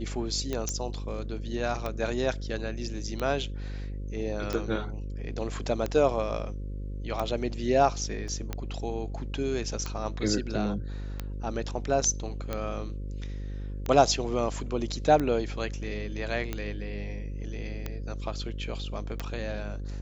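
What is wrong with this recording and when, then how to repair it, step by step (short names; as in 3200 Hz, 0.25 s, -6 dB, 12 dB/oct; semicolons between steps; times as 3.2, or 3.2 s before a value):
buzz 50 Hz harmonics 11 -35 dBFS
tick 45 rpm -17 dBFS
0.69 pop -16 dBFS
8.28 gap 2.3 ms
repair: de-click; de-hum 50 Hz, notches 11; interpolate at 8.28, 2.3 ms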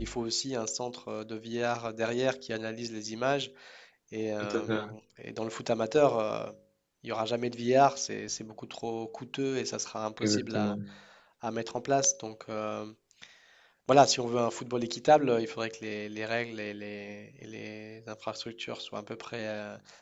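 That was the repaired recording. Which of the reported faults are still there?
none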